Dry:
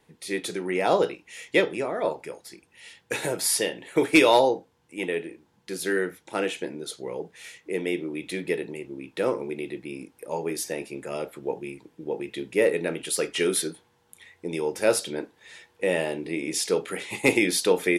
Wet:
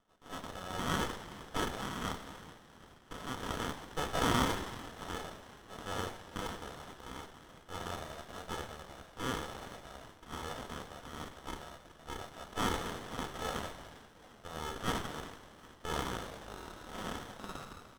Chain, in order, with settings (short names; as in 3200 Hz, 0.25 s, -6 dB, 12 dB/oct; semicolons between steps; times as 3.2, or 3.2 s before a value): tape stop at the end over 2.42 s; sample-and-hold 34×; transient shaper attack -5 dB, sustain +6 dB; ladder band-pass 3800 Hz, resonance 35%; on a send: frequency-shifting echo 0.378 s, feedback 57%, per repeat -62 Hz, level -15 dB; on the sum: shoebox room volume 1700 m³, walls mixed, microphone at 1.8 m; running maximum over 17 samples; gain +8.5 dB